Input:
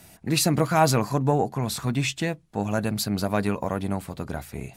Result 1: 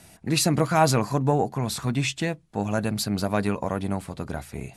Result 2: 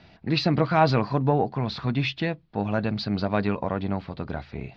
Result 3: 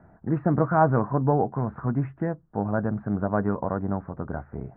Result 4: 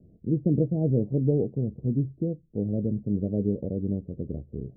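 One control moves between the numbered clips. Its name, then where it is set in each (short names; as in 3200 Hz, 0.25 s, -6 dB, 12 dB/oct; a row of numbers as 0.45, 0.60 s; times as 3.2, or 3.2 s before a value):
steep low-pass, frequency: 12000, 4700, 1600, 510 Hz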